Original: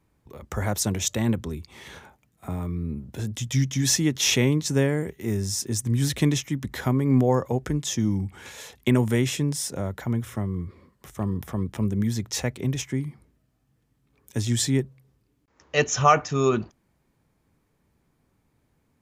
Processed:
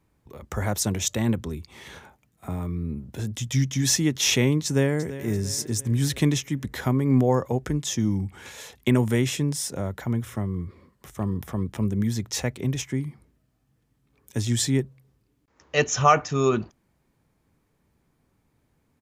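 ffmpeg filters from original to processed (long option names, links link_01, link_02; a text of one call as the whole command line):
ffmpeg -i in.wav -filter_complex "[0:a]asplit=2[link_01][link_02];[link_02]afade=type=in:start_time=4.65:duration=0.01,afade=type=out:start_time=5.28:duration=0.01,aecho=0:1:340|680|1020|1360|1700:0.199526|0.0997631|0.0498816|0.0249408|0.0124704[link_03];[link_01][link_03]amix=inputs=2:normalize=0" out.wav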